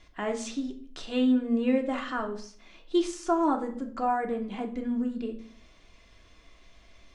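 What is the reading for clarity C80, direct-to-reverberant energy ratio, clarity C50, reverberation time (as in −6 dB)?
15.5 dB, 1.5 dB, 12.0 dB, 0.55 s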